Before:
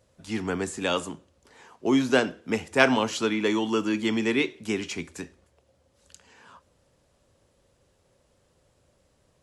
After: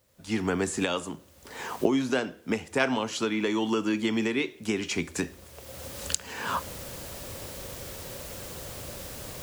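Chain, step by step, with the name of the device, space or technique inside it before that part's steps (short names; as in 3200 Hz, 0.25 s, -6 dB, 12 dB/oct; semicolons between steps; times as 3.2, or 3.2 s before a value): cheap recorder with automatic gain (white noise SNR 38 dB; recorder AGC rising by 27 dB/s); gain -6.5 dB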